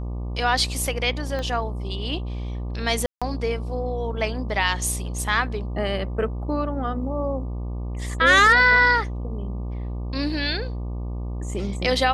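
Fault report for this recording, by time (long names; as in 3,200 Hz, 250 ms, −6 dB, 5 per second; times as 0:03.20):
mains buzz 60 Hz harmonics 20 −29 dBFS
0:01.39: click −18 dBFS
0:03.06–0:03.22: drop-out 156 ms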